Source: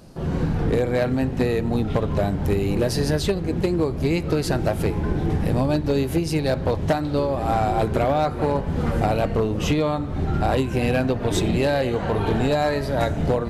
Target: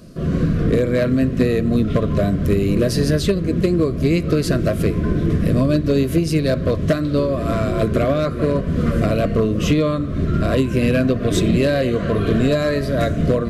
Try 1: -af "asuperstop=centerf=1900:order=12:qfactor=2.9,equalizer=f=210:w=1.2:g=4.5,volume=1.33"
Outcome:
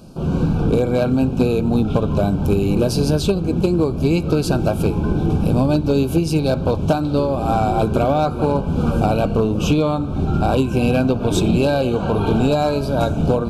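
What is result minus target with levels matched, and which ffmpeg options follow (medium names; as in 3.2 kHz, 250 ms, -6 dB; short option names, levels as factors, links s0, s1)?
1 kHz band +7.0 dB
-af "asuperstop=centerf=840:order=12:qfactor=2.9,equalizer=f=210:w=1.2:g=4.5,volume=1.33"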